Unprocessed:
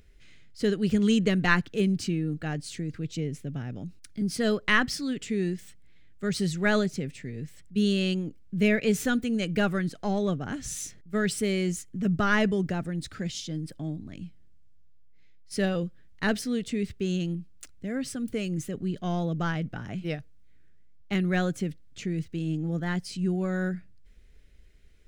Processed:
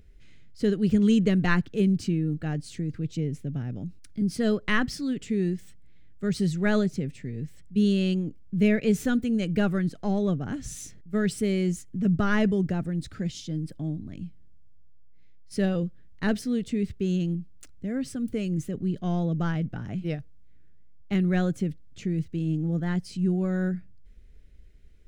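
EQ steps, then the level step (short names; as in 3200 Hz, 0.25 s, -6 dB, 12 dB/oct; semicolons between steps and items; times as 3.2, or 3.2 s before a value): low shelf 480 Hz +8.5 dB; -4.5 dB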